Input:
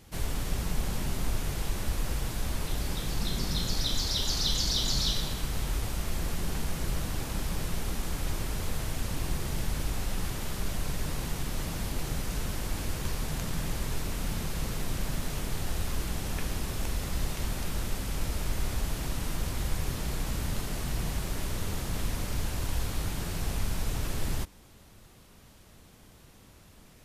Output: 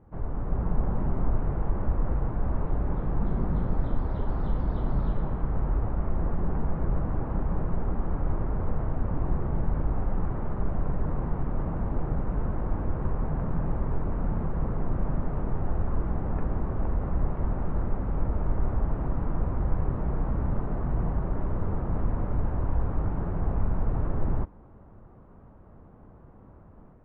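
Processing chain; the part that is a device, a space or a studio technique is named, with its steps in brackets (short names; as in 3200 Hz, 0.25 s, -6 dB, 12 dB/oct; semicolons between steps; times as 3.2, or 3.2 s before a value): action camera in a waterproof case (LPF 1200 Hz 24 dB/oct; AGC gain up to 5 dB; AAC 48 kbps 22050 Hz)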